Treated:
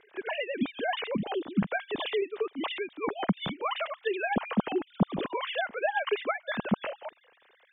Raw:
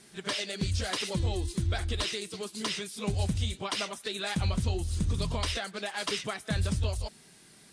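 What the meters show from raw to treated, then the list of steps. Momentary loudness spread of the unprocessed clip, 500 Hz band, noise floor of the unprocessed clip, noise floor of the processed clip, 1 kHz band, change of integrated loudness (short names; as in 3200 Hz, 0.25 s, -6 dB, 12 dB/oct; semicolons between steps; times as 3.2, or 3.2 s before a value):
4 LU, +6.5 dB, -56 dBFS, -64 dBFS, +6.0 dB, +0.5 dB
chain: sine-wave speech; air absorption 63 m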